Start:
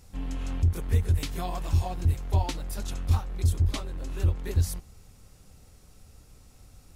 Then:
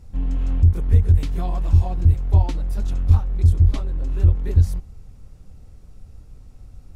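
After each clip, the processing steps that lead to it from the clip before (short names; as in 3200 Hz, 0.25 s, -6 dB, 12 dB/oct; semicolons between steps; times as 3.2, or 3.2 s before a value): tilt -2.5 dB/oct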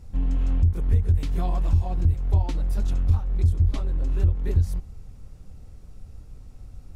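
compressor 2.5:1, threshold -18 dBFS, peak gain reduction 7.5 dB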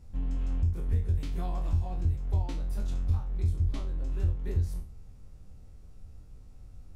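spectral trails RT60 0.38 s; gain -8 dB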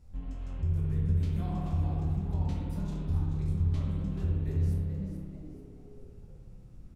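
frequency-shifting echo 0.433 s, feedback 34%, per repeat +110 Hz, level -9.5 dB; spring tank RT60 1.8 s, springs 58 ms, chirp 65 ms, DRR -0.5 dB; gain -5 dB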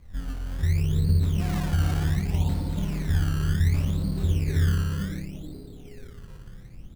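decimation with a swept rate 20×, swing 100% 0.67 Hz; gain +6 dB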